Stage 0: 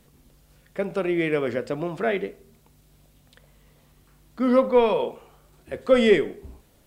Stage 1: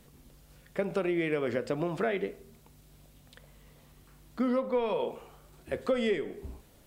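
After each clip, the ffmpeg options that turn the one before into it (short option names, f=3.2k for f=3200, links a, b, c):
-af "acompressor=threshold=-26dB:ratio=6"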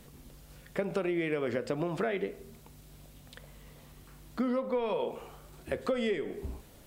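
-af "acompressor=threshold=-36dB:ratio=2,volume=4dB"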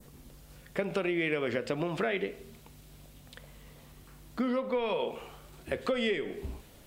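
-af "adynamicequalizer=threshold=0.00224:dfrequency=2800:dqfactor=0.99:tfrequency=2800:tqfactor=0.99:attack=5:release=100:ratio=0.375:range=3.5:mode=boostabove:tftype=bell"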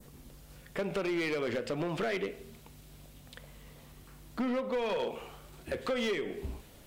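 -af "asoftclip=type=hard:threshold=-27.5dB"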